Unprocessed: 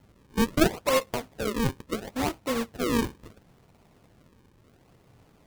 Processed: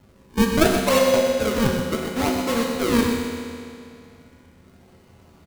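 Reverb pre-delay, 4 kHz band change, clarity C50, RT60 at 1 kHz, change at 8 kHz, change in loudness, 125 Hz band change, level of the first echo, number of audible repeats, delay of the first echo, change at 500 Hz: 5 ms, +7.5 dB, 1.0 dB, 2.4 s, +7.0 dB, +7.0 dB, +5.5 dB, -8.5 dB, 1, 0.125 s, +8.5 dB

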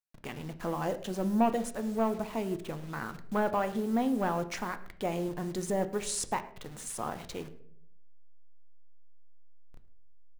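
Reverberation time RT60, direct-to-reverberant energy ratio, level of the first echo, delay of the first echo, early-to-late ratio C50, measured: 0.65 s, 8.5 dB, -21.5 dB, 0.108 s, 14.0 dB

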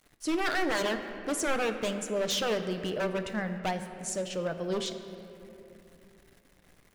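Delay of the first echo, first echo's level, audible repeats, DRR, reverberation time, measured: none, none, none, 6.5 dB, 2.9 s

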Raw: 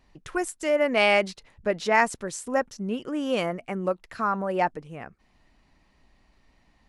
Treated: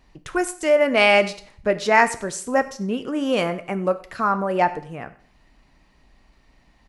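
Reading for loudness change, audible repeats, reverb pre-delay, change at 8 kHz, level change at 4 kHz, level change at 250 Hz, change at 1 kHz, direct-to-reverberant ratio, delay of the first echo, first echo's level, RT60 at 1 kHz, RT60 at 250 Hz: +5.0 dB, 1, 5 ms, +5.0 dB, +5.0 dB, +4.5 dB, +5.0 dB, 10.0 dB, 96 ms, -21.5 dB, 0.55 s, 0.60 s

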